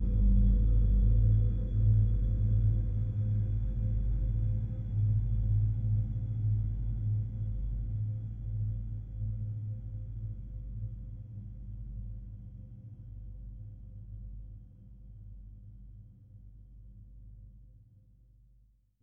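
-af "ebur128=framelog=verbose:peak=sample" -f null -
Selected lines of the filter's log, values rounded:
Integrated loudness:
  I:         -32.1 LUFS
  Threshold: -44.3 LUFS
Loudness range:
  LRA:        21.8 LU
  Threshold: -55.1 LUFS
  LRA low:   -51.4 LUFS
  LRA high:  -29.7 LUFS
Sample peak:
  Peak:      -16.7 dBFS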